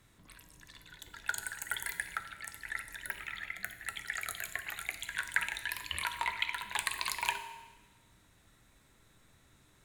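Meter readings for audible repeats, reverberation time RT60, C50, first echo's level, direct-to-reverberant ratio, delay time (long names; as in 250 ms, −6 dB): no echo audible, 1.2 s, 11.0 dB, no echo audible, 8.5 dB, no echo audible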